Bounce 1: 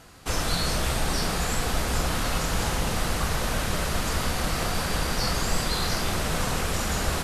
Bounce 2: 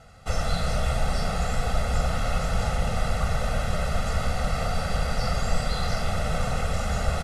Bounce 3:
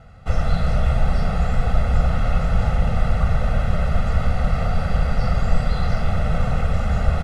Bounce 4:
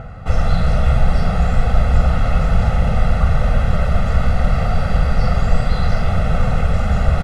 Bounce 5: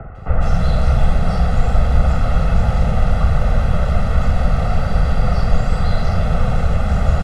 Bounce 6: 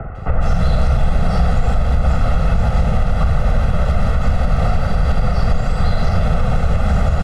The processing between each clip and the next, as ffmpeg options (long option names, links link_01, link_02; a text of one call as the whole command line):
ffmpeg -i in.wav -af "lowpass=frequency=11000:width=0.5412,lowpass=frequency=11000:width=1.3066,highshelf=frequency=2500:gain=-9,aecho=1:1:1.5:0.98,volume=-2.5dB" out.wav
ffmpeg -i in.wav -af "bass=frequency=250:gain=6,treble=frequency=4000:gain=-12,volume=1.5dB" out.wav
ffmpeg -i in.wav -filter_complex "[0:a]acrossover=split=2300[link_01][link_02];[link_01]acompressor=mode=upward:threshold=-27dB:ratio=2.5[link_03];[link_03][link_02]amix=inputs=2:normalize=0,asplit=2[link_04][link_05];[link_05]adelay=46,volume=-10.5dB[link_06];[link_04][link_06]amix=inputs=2:normalize=0,volume=3.5dB" out.wav
ffmpeg -i in.wav -filter_complex "[0:a]acrossover=split=110|300|960[link_01][link_02][link_03][link_04];[link_02]acrusher=bits=5:mix=0:aa=0.5[link_05];[link_01][link_05][link_03][link_04]amix=inputs=4:normalize=0,acrossover=split=2200[link_06][link_07];[link_07]adelay=150[link_08];[link_06][link_08]amix=inputs=2:normalize=0" out.wav
ffmpeg -i in.wav -af "alimiter=limit=-11dB:level=0:latency=1:release=150,volume=5dB" out.wav